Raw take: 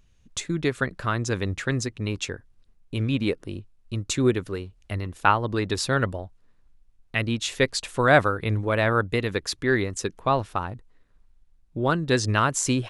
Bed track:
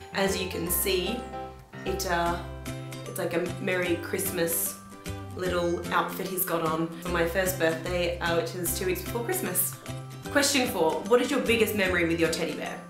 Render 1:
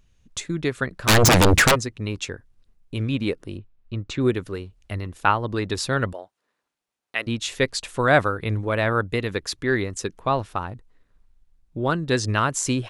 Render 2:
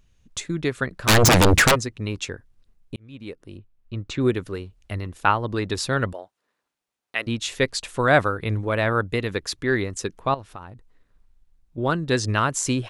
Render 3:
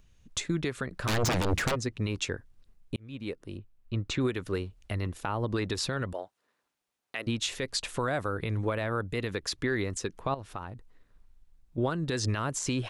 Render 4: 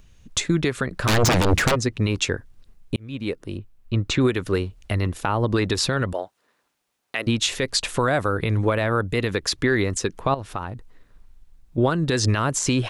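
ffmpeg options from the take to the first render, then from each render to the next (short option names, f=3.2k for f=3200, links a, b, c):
-filter_complex "[0:a]asplit=3[a][b][c];[a]afade=t=out:st=1.07:d=0.02[d];[b]aeval=exprs='0.282*sin(PI/2*7.94*val(0)/0.282)':c=same,afade=t=in:st=1.07:d=0.02,afade=t=out:st=1.74:d=0.02[e];[c]afade=t=in:st=1.74:d=0.02[f];[d][e][f]amix=inputs=3:normalize=0,asplit=3[g][h][i];[g]afade=t=out:st=3.57:d=0.02[j];[h]lowpass=3.3k,afade=t=in:st=3.57:d=0.02,afade=t=out:st=4.2:d=0.02[k];[i]afade=t=in:st=4.2:d=0.02[l];[j][k][l]amix=inputs=3:normalize=0,asettb=1/sr,asplit=3[m][n][o];[m]atrim=end=6.134[p];[n]atrim=start=6.13:end=7.27,asetpts=PTS-STARTPTS,afade=t=in:d=0.004:c=qsin,afade=t=out:st=1.136:d=0.004:c=qsin,highpass=440[q];[o]atrim=start=7.266[r];[p][q]acrossfade=d=0.004:c1=hsin:c2=qsin[s];[s][r]acrossfade=d=0.004:c1=qsin:c2=hsin"
-filter_complex "[0:a]asettb=1/sr,asplit=3[a][b][c];[a]atrim=end=10.344[d];[b]atrim=start=10.34:end=11.78,asetpts=PTS-STARTPTS,afade=t=in:d=0.004:c=qsin,afade=t=out:st=1.436:d=0.004:c=qsin,acompressor=threshold=-42dB:ratio=2:attack=3.2:release=140:knee=1:detection=peak[e];[c]atrim=start=11.776[f];[d][e]acrossfade=d=0.004:c1=hsin:c2=qsin[g];[g][f]acrossfade=d=0.004:c1=qsin:c2=hsin,asplit=2[h][i];[h]atrim=end=2.96,asetpts=PTS-STARTPTS,afade=t=out:st=2.956:d=0.004:c=hsin[j];[i]atrim=start=2.96,asetpts=PTS-STARTPTS,afade=t=in:d=1.19[k];[j][k]concat=n=2:v=0:a=1"
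-filter_complex "[0:a]acrossover=split=700|6600[a][b][c];[a]acompressor=threshold=-24dB:ratio=4[d];[b]acompressor=threshold=-27dB:ratio=4[e];[c]acompressor=threshold=-40dB:ratio=4[f];[d][e][f]amix=inputs=3:normalize=0,alimiter=limit=-19dB:level=0:latency=1:release=131"
-af "volume=9dB"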